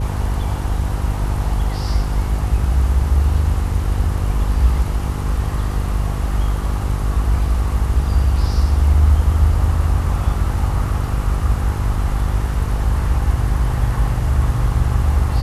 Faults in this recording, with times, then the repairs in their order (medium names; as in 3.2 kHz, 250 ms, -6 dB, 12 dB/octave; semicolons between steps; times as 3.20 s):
buzz 50 Hz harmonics 10 -21 dBFS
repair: de-hum 50 Hz, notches 10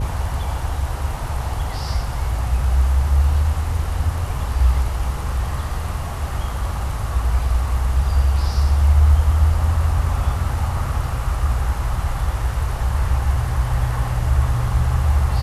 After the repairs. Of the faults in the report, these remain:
nothing left